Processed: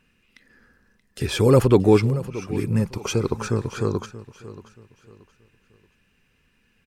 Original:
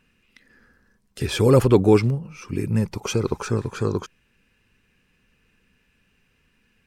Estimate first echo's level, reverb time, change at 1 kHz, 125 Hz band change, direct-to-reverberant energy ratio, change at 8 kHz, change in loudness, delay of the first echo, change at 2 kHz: −16.0 dB, no reverb audible, 0.0 dB, 0.0 dB, no reverb audible, 0.0 dB, 0.0 dB, 629 ms, 0.0 dB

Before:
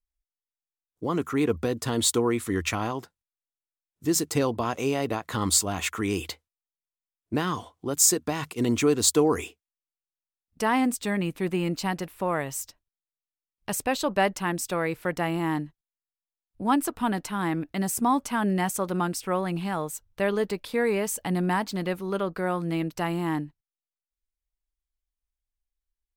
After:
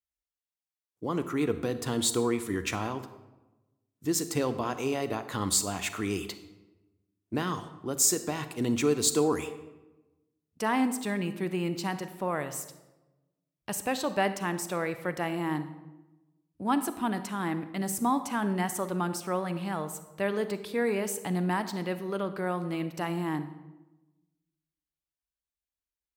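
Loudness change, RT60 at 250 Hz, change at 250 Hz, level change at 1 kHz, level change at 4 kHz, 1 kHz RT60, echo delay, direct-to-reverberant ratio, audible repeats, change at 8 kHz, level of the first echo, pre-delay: −3.5 dB, 1.3 s, −3.5 dB, −3.5 dB, −3.5 dB, 1.0 s, no echo audible, 11.0 dB, no echo audible, −4.0 dB, no echo audible, 33 ms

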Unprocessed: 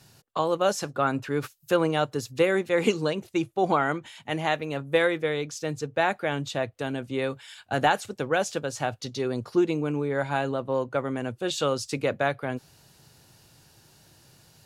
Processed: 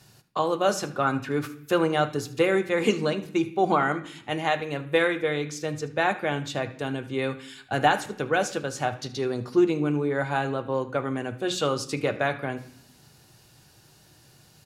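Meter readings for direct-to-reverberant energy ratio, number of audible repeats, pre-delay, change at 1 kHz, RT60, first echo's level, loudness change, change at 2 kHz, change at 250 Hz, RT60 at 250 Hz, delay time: 5.5 dB, 1, 3 ms, +1.5 dB, 0.65 s, −17.0 dB, +1.0 dB, +1.5 dB, +1.5 dB, 0.85 s, 76 ms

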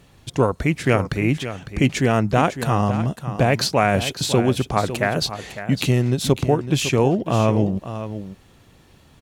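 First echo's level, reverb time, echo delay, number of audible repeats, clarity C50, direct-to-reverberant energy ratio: −11.5 dB, no reverb audible, 554 ms, 1, no reverb audible, no reverb audible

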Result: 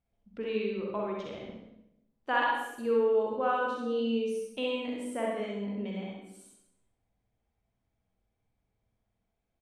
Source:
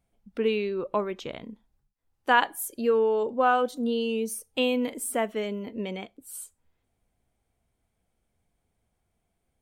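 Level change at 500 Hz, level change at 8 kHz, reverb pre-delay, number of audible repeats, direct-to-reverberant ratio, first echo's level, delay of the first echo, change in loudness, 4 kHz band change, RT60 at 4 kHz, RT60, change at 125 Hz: −3.5 dB, −16.0 dB, 39 ms, 1, −3.0 dB, −4.0 dB, 65 ms, −4.5 dB, −6.5 dB, 0.70 s, 0.85 s, can't be measured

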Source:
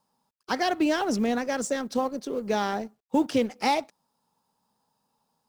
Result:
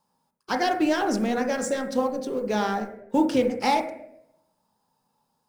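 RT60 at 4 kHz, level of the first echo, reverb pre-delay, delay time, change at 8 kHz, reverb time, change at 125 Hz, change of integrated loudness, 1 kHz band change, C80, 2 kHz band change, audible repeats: 0.55 s, no echo audible, 6 ms, no echo audible, +0.5 dB, 0.80 s, +2.5 dB, +2.0 dB, +2.5 dB, 12.0 dB, +1.5 dB, no echo audible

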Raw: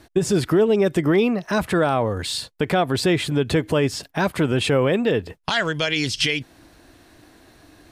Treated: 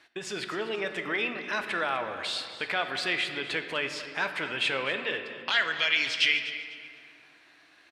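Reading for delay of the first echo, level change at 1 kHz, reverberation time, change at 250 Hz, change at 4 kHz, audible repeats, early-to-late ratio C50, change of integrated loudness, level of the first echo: 249 ms, −7.5 dB, 2.5 s, −19.5 dB, −3.0 dB, 2, 7.5 dB, −7.5 dB, −15.0 dB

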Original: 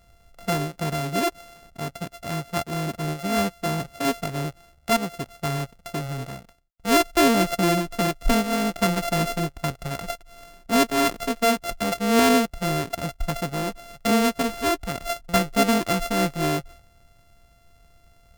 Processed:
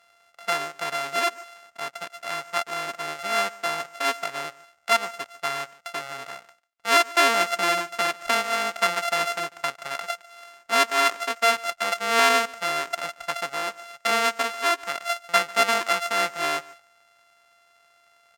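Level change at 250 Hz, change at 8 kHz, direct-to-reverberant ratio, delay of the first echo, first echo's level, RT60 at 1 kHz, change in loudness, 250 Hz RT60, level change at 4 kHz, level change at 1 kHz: −16.0 dB, −0.5 dB, no reverb audible, 145 ms, −21.5 dB, no reverb audible, 0.0 dB, no reverb audible, +2.5 dB, +2.0 dB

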